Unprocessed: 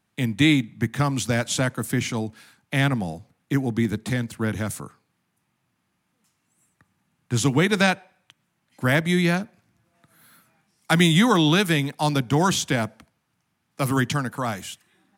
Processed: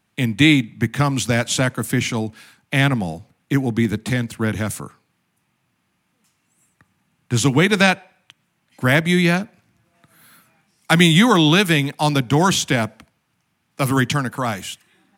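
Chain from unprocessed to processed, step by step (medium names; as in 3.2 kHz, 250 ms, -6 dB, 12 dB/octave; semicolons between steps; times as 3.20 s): peaking EQ 2.6 kHz +3 dB 0.69 oct; trim +4 dB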